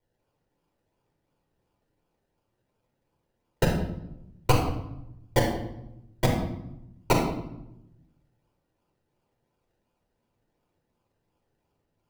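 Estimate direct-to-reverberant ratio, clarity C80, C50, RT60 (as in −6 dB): −1.0 dB, 7.0 dB, 4.0 dB, 0.85 s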